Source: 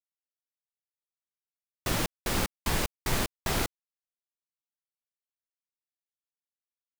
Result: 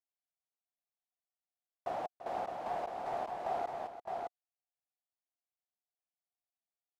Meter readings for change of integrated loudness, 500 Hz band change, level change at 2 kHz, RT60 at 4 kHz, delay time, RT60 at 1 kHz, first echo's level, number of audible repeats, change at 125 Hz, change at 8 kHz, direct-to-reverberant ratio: -8.5 dB, -1.5 dB, -16.0 dB, none, 0.339 s, none, -12.0 dB, 2, -24.5 dB, under -25 dB, none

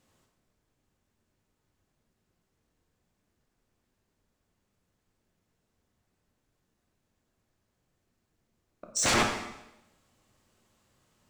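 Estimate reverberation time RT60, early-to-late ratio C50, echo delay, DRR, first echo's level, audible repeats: 0.90 s, 5.0 dB, none, 2.0 dB, none, none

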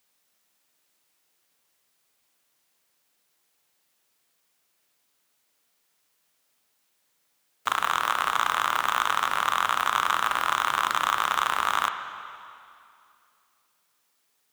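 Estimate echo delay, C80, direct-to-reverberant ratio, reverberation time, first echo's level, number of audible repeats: none, 9.0 dB, 7.0 dB, 2.5 s, none, none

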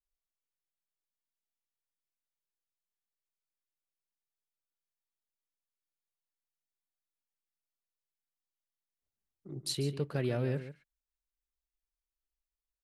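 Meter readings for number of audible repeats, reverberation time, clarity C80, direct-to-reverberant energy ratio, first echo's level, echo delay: 1, none, none, none, -12.5 dB, 0.142 s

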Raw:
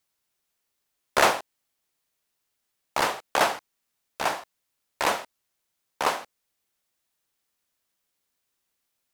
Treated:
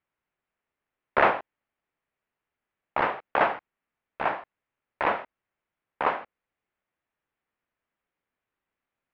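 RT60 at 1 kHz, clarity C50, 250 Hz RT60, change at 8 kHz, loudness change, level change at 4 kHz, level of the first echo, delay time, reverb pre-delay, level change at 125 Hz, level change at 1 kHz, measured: none, none, none, under -35 dB, -1.0 dB, -12.0 dB, none, none, none, 0.0 dB, 0.0 dB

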